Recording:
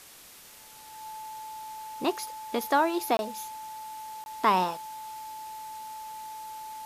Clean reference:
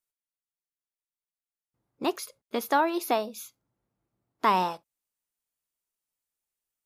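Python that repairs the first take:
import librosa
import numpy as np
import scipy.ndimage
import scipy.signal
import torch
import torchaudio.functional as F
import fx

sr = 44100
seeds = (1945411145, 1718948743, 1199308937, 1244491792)

y = fx.notch(x, sr, hz=870.0, q=30.0)
y = fx.fix_interpolate(y, sr, at_s=(3.17, 4.24), length_ms=21.0)
y = fx.noise_reduce(y, sr, print_start_s=0.01, print_end_s=0.51, reduce_db=30.0)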